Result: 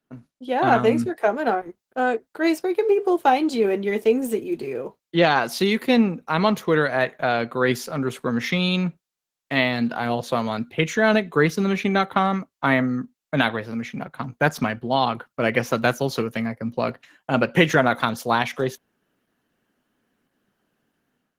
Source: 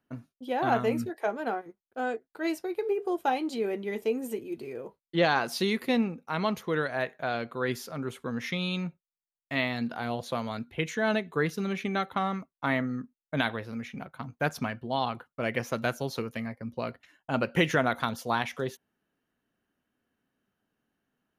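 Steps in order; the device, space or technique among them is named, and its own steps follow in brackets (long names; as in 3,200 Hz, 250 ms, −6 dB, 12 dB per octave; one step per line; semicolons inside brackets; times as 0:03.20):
video call (high-pass filter 110 Hz 24 dB per octave; automatic gain control gain up to 10 dB; Opus 16 kbit/s 48,000 Hz)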